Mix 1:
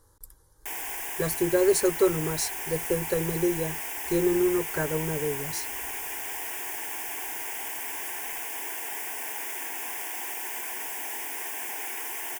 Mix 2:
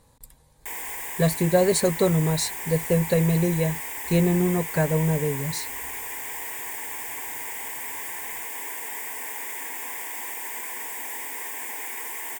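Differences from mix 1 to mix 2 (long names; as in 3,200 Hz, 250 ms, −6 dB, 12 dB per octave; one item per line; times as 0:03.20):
speech: remove phaser with its sweep stopped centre 700 Hz, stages 6
master: add EQ curve with evenly spaced ripples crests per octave 1, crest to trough 7 dB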